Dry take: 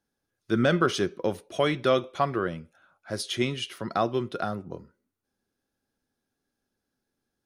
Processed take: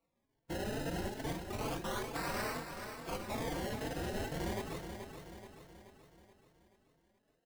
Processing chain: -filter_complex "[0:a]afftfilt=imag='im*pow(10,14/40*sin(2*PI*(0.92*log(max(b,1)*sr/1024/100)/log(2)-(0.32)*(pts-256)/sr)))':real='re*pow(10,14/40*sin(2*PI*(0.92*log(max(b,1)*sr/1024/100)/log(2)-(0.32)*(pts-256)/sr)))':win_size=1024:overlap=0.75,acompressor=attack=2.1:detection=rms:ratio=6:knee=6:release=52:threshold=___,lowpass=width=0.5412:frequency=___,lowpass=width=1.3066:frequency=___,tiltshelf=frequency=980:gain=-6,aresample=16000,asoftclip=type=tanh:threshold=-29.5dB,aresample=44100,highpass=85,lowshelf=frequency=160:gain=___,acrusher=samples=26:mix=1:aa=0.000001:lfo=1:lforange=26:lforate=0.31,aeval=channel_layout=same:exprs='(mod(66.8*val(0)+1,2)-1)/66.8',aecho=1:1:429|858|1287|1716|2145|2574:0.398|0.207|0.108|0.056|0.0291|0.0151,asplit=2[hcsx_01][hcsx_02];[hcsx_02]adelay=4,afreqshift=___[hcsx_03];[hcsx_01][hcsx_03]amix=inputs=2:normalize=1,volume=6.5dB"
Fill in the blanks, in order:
-23dB, 2700, 2700, -9, 2.3